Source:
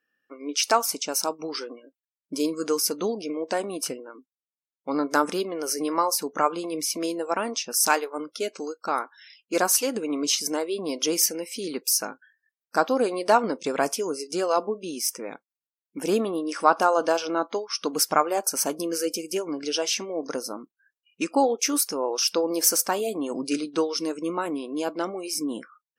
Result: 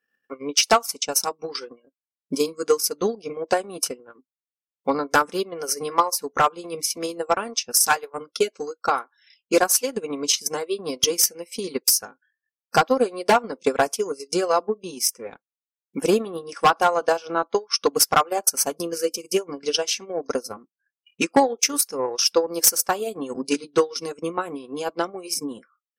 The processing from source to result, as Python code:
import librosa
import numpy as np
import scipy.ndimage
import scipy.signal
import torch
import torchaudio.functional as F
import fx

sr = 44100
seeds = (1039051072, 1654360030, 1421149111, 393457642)

y = fx.transient(x, sr, attack_db=11, sustain_db=-10)
y = np.clip(y, -10.0 ** (-6.5 / 20.0), 10.0 ** (-6.5 / 20.0))
y = fx.notch_comb(y, sr, f0_hz=310.0)